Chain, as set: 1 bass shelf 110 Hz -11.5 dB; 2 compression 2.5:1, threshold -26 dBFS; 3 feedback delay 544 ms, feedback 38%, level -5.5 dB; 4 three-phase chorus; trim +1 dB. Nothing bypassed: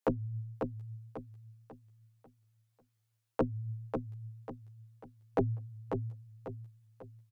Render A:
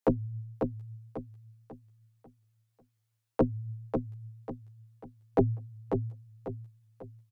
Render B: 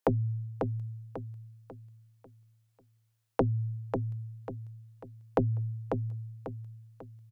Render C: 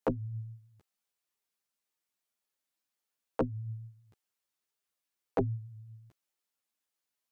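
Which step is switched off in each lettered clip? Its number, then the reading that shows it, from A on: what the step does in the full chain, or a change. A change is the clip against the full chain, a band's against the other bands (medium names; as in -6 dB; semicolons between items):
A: 2, 2 kHz band -4.5 dB; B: 4, 125 Hz band +4.0 dB; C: 3, momentary loudness spread change -1 LU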